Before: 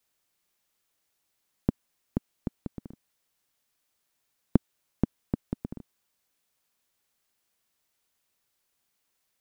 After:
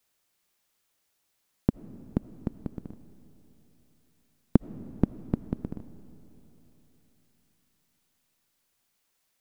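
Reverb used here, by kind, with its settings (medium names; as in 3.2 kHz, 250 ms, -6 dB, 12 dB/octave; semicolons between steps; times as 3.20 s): algorithmic reverb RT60 3.8 s, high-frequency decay 0.95×, pre-delay 40 ms, DRR 15 dB; trim +2 dB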